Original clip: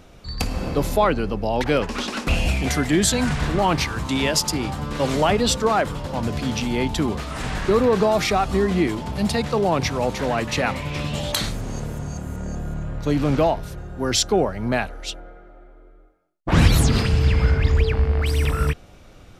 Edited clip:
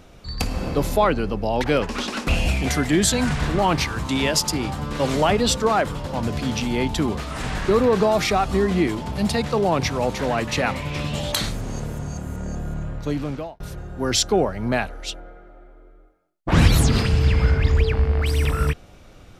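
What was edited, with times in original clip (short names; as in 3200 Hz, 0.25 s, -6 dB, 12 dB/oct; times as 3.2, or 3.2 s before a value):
12.84–13.6 fade out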